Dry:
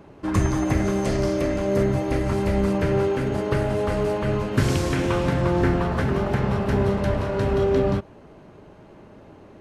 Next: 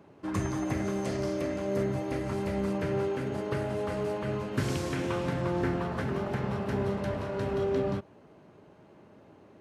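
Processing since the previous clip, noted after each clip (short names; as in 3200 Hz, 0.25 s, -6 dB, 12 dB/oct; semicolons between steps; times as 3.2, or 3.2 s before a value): HPF 99 Hz 12 dB/oct; gain -8 dB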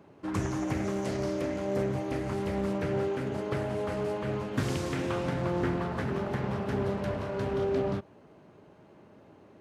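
Doppler distortion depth 0.45 ms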